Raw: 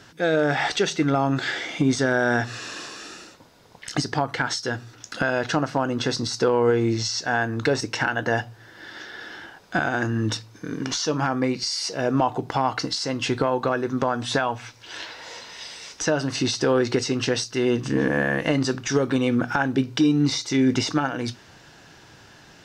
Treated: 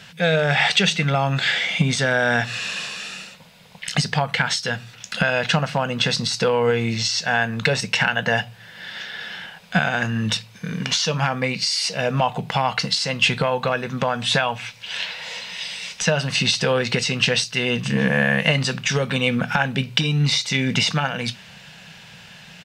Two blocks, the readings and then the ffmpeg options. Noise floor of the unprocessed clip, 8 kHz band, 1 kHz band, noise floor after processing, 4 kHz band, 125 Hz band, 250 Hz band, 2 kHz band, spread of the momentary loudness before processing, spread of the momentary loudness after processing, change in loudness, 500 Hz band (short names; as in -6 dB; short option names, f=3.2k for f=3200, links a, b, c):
-50 dBFS, +3.5 dB, +1.5 dB, -45 dBFS, +8.0 dB, +5.0 dB, -2.5 dB, +5.5 dB, 15 LU, 12 LU, +2.5 dB, 0.0 dB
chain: -af "firequalizer=gain_entry='entry(110,0);entry(180,13);entry(300,-15);entry(490,2);entry(1300,1);entry(2500,13);entry(5700,2);entry(8300,7)':delay=0.05:min_phase=1"